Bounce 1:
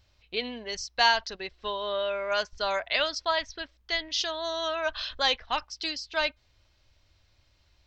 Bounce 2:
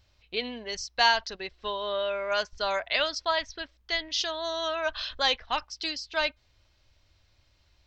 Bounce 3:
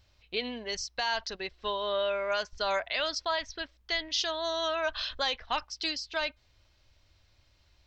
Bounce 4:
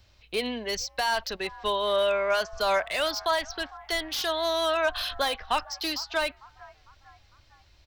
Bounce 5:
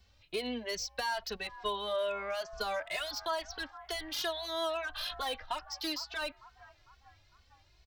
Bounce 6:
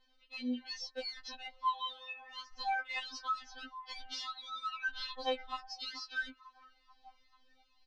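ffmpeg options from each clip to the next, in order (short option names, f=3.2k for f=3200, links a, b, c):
-af anull
-af "alimiter=limit=-19dB:level=0:latency=1:release=81"
-filter_complex "[0:a]acrossover=split=240|550|1500[a][b][c][d];[c]asplit=5[e][f][g][h][i];[f]adelay=452,afreqshift=64,volume=-16dB[j];[g]adelay=904,afreqshift=128,volume=-22.2dB[k];[h]adelay=1356,afreqshift=192,volume=-28.4dB[l];[i]adelay=1808,afreqshift=256,volume=-34.6dB[m];[e][j][k][l][m]amix=inputs=5:normalize=0[n];[d]asoftclip=type=hard:threshold=-34.5dB[o];[a][b][n][o]amix=inputs=4:normalize=0,volume=5.5dB"
-filter_complex "[0:a]acompressor=threshold=-26dB:ratio=6,asplit=2[a][b];[b]adelay=2.3,afreqshift=2.3[c];[a][c]amix=inputs=2:normalize=1,volume=-2.5dB"
-af "lowpass=f=5.5k:w=0.5412,lowpass=f=5.5k:w=1.3066,afftfilt=real='re*3.46*eq(mod(b,12),0)':imag='im*3.46*eq(mod(b,12),0)':win_size=2048:overlap=0.75,volume=-1dB"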